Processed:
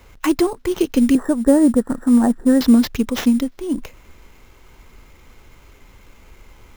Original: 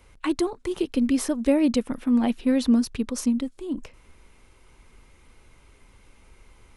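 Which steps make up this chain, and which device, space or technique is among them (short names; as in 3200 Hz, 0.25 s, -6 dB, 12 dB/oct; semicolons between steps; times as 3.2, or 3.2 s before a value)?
1.15–2.61 Chebyshev low-pass 1900 Hz, order 10; early companding sampler (sample-rate reducer 9200 Hz, jitter 0%; companded quantiser 8-bit); gain +7.5 dB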